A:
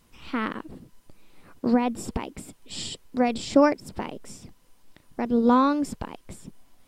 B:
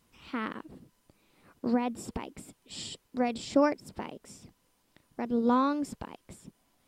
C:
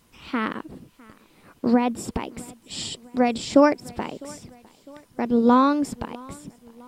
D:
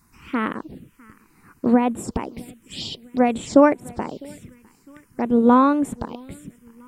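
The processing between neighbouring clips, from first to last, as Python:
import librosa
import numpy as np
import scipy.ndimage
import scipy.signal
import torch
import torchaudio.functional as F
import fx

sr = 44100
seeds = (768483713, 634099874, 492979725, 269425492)

y1 = fx.highpass(x, sr, hz=64.0, slope=6)
y1 = y1 * librosa.db_to_amplitude(-6.0)
y2 = fx.echo_feedback(y1, sr, ms=655, feedback_pct=52, wet_db=-24.0)
y2 = y2 * librosa.db_to_amplitude(8.5)
y3 = fx.env_phaser(y2, sr, low_hz=530.0, high_hz=5000.0, full_db=-22.5)
y3 = y3 * librosa.db_to_amplitude(2.5)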